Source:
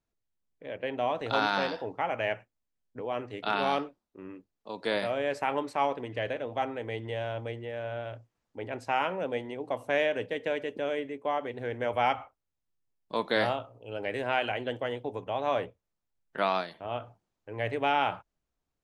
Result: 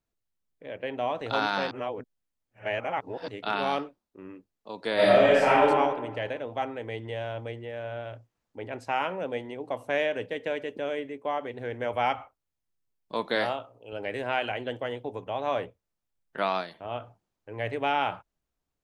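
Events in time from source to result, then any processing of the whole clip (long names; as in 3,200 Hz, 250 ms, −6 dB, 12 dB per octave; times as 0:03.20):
0:01.71–0:03.28: reverse
0:04.94–0:05.64: thrown reverb, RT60 1.3 s, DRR −10 dB
0:13.35–0:13.93: high-pass filter 210 Hz 6 dB per octave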